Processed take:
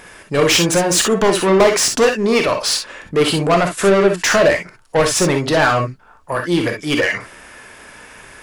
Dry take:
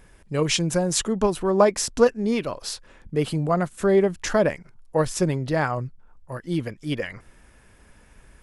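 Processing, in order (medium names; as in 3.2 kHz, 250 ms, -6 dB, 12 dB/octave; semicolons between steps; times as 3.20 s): overdrive pedal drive 26 dB, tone 6.5 kHz, clips at -4.5 dBFS; gated-style reverb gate 80 ms rising, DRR 3.5 dB; trim -1.5 dB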